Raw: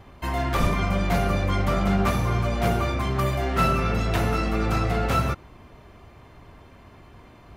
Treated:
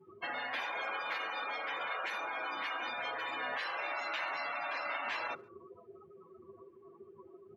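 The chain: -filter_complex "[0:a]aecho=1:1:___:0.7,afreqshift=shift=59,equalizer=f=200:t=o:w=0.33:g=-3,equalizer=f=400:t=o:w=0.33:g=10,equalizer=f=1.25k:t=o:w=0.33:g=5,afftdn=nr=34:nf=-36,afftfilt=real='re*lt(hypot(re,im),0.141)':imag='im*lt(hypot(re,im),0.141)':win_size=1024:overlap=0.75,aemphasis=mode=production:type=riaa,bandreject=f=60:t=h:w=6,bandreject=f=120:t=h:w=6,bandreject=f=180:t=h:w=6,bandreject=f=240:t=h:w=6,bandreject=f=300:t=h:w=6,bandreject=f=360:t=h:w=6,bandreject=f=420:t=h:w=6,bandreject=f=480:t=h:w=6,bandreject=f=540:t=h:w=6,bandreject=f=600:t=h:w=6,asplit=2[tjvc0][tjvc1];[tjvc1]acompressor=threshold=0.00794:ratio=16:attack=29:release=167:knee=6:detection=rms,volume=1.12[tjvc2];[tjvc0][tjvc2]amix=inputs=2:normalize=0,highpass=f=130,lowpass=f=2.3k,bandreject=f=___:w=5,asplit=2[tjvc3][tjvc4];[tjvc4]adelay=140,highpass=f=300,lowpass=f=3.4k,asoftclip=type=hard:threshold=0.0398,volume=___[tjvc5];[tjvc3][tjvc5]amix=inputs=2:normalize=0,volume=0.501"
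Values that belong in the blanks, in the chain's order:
6.5, 190, 0.0447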